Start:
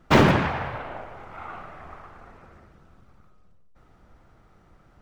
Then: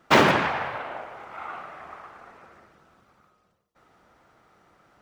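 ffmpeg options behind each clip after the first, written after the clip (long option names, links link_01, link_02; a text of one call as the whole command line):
ffmpeg -i in.wav -af "highpass=frequency=510:poles=1,volume=3dB" out.wav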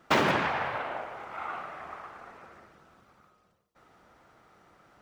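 ffmpeg -i in.wav -af "alimiter=limit=-13dB:level=0:latency=1:release=426" out.wav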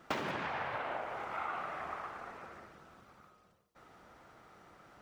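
ffmpeg -i in.wav -af "acompressor=threshold=-35dB:ratio=10,volume=1dB" out.wav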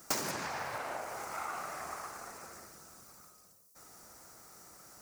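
ffmpeg -i in.wav -af "aexciter=amount=12.3:drive=5.4:freq=4900,volume=-1dB" out.wav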